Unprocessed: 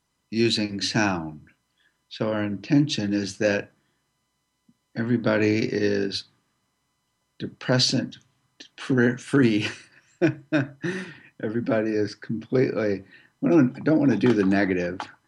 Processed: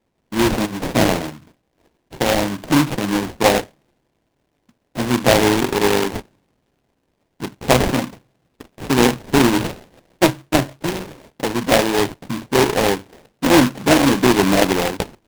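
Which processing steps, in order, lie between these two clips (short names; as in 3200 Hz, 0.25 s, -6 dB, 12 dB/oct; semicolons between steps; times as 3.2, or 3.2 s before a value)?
bell 770 Hz +9.5 dB 1.9 oct; sample-rate reducer 1300 Hz, jitter 20%; noise-modulated delay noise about 1700 Hz, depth 0.088 ms; gain +2 dB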